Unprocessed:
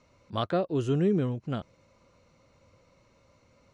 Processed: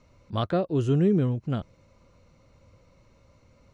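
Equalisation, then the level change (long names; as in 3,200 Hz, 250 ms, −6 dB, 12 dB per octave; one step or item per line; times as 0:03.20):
low-shelf EQ 66 Hz +9.5 dB
low-shelf EQ 330 Hz +4 dB
0.0 dB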